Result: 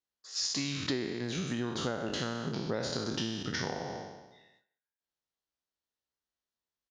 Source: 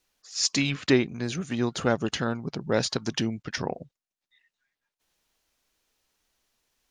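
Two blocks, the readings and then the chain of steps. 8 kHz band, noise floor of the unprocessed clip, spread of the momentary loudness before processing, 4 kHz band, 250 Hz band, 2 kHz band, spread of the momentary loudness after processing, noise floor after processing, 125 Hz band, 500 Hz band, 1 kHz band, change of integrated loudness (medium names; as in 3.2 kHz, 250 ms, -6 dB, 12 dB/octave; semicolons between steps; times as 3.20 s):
-6.5 dB, under -85 dBFS, 9 LU, -4.5 dB, -7.5 dB, -7.5 dB, 7 LU, under -85 dBFS, -6.5 dB, -8.0 dB, -5.5 dB, -7.0 dB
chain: spectral sustain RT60 1.06 s; low-pass 6 kHz 12 dB/octave; gate with hold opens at -54 dBFS; high-pass 47 Hz; peaking EQ 2.4 kHz -6.5 dB 0.42 oct; compression 6:1, threshold -31 dBFS, peak gain reduction 15.5 dB; speakerphone echo 160 ms, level -19 dB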